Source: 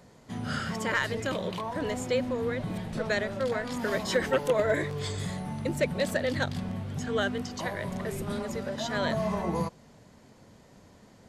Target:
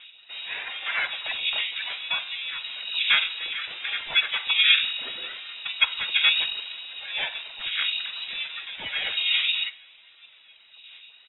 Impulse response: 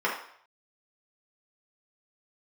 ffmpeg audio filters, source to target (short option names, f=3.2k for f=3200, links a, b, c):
-filter_complex "[0:a]asplit=2[a][b];[b]adelay=740,lowpass=f=1.1k:p=1,volume=-23dB,asplit=2[c][d];[d]adelay=740,lowpass=f=1.1k:p=1,volume=0.38,asplit=2[e][f];[f]adelay=740,lowpass=f=1.1k:p=1,volume=0.38[g];[a][c][e][g]amix=inputs=4:normalize=0,aphaser=in_gain=1:out_gain=1:delay=2.9:decay=0.7:speed=0.64:type=sinusoidal,lowpass=f=3.3k:t=q:w=0.5098,lowpass=f=3.3k:t=q:w=0.6013,lowpass=f=3.3k:t=q:w=0.9,lowpass=f=3.3k:t=q:w=2.563,afreqshift=-3900,asplit=2[h][i];[1:a]atrim=start_sample=2205,asetrate=52920,aresample=44100[j];[i][j]afir=irnorm=-1:irlink=0,volume=-17dB[k];[h][k]amix=inputs=2:normalize=0,asplit=4[l][m][n][o];[m]asetrate=29433,aresample=44100,atempo=1.49831,volume=-8dB[p];[n]asetrate=33038,aresample=44100,atempo=1.33484,volume=-4dB[q];[o]asetrate=35002,aresample=44100,atempo=1.25992,volume=-10dB[r];[l][p][q][r]amix=inputs=4:normalize=0,volume=-5dB"